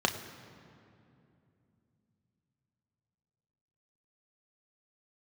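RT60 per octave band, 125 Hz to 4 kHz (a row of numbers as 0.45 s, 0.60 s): 4.5 s, 4.1 s, 2.9 s, 2.5 s, 2.1 s, 1.6 s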